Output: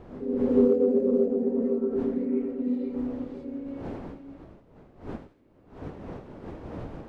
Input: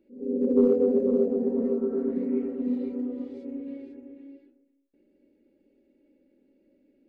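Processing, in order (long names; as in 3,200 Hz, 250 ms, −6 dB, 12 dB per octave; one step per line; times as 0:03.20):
wind on the microphone 420 Hz −43 dBFS
delay with a high-pass on its return 85 ms, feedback 47%, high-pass 2,000 Hz, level −12 dB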